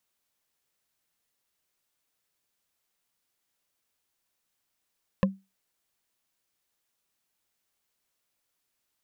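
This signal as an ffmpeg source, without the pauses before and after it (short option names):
-f lavfi -i "aevalsrc='0.158*pow(10,-3*t/0.24)*sin(2*PI*193*t)+0.112*pow(10,-3*t/0.071)*sin(2*PI*532.1*t)+0.0794*pow(10,-3*t/0.032)*sin(2*PI*1043*t)+0.0562*pow(10,-3*t/0.017)*sin(2*PI*1724.1*t)+0.0398*pow(10,-3*t/0.011)*sin(2*PI*2574.6*t)':d=0.45:s=44100"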